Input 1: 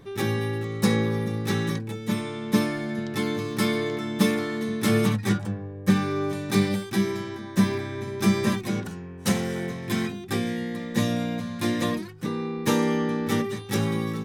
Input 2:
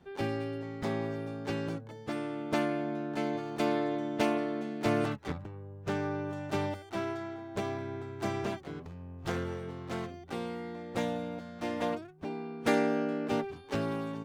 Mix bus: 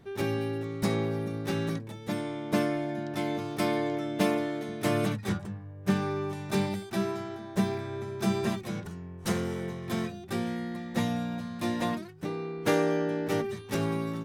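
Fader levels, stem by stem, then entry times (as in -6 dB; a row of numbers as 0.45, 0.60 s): -8.0, -0.5 dB; 0.00, 0.00 s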